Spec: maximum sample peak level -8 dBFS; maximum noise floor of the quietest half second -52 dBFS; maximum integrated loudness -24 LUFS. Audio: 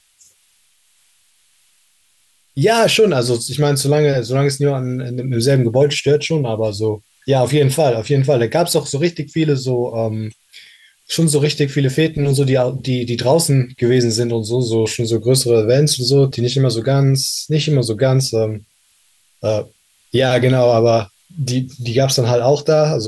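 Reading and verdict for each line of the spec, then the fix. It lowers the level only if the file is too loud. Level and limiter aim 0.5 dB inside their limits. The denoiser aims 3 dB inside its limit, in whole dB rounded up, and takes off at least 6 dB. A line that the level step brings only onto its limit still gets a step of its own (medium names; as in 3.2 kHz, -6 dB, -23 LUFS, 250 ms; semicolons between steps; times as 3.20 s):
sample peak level -4.0 dBFS: fail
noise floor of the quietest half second -58 dBFS: pass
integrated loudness -16.0 LUFS: fail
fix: trim -8.5 dB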